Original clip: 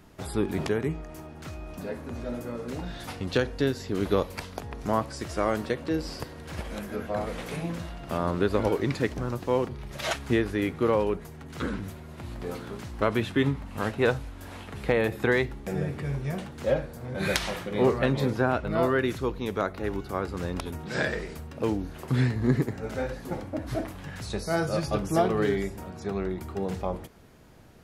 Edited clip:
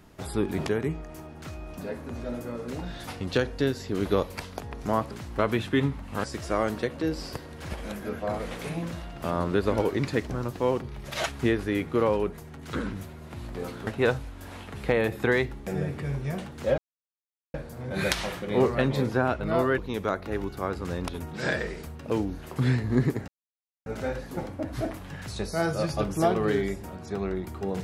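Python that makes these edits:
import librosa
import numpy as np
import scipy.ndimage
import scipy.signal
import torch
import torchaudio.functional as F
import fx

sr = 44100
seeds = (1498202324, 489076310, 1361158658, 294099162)

y = fx.edit(x, sr, fx.move(start_s=12.74, length_s=1.13, to_s=5.11),
    fx.insert_silence(at_s=16.78, length_s=0.76),
    fx.cut(start_s=19.02, length_s=0.28),
    fx.insert_silence(at_s=22.8, length_s=0.58), tone=tone)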